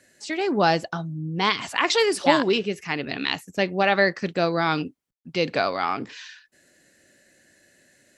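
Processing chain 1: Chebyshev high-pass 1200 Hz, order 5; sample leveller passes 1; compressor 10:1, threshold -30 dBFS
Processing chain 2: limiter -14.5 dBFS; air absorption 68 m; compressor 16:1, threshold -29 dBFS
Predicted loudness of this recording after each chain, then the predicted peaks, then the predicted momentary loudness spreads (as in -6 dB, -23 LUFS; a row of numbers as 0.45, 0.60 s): -34.5, -35.0 LUFS; -15.0, -17.5 dBFS; 8, 6 LU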